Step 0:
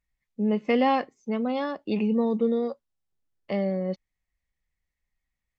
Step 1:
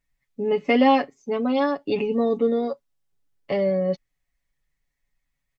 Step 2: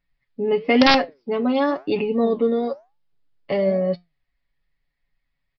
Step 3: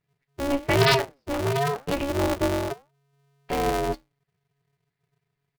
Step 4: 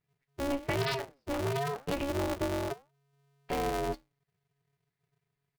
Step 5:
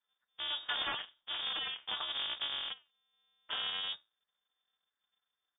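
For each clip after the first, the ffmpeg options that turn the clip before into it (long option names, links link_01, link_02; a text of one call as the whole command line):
ffmpeg -i in.wav -af "aecho=1:1:7.1:0.78,volume=3dB" out.wav
ffmpeg -i in.wav -af "aresample=11025,aeval=exprs='(mod(2.37*val(0)+1,2)-1)/2.37':channel_layout=same,aresample=44100,flanger=delay=5.6:depth=6.7:regen=84:speed=1:shape=sinusoidal,volume=6.5dB" out.wav
ffmpeg -i in.wav -af "aeval=exprs='val(0)*sgn(sin(2*PI*140*n/s))':channel_layout=same,volume=-4.5dB" out.wav
ffmpeg -i in.wav -af "acompressor=threshold=-23dB:ratio=10,volume=-4.5dB" out.wav
ffmpeg -i in.wav -af "aexciter=amount=2.1:drive=8.3:freq=2100,lowpass=frequency=3100:width_type=q:width=0.5098,lowpass=frequency=3100:width_type=q:width=0.6013,lowpass=frequency=3100:width_type=q:width=0.9,lowpass=frequency=3100:width_type=q:width=2.563,afreqshift=-3700,volume=-6.5dB" out.wav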